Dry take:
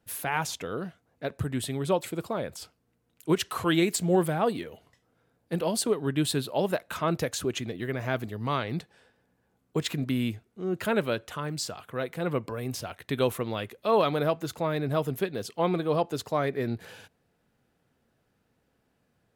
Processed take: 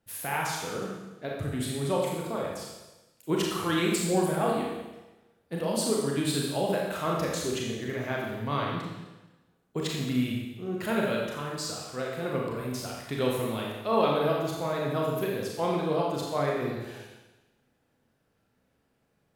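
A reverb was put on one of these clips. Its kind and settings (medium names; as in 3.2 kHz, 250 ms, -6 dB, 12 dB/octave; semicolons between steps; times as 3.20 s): Schroeder reverb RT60 1.1 s, combs from 28 ms, DRR -2.5 dB; trim -4.5 dB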